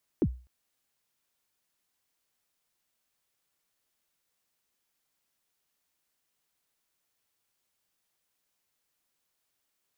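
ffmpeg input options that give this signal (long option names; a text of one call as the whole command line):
ffmpeg -f lavfi -i "aevalsrc='0.126*pow(10,-3*t/0.35)*sin(2*PI*(410*0.059/log(62/410)*(exp(log(62/410)*min(t,0.059)/0.059)-1)+62*max(t-0.059,0)))':duration=0.25:sample_rate=44100" out.wav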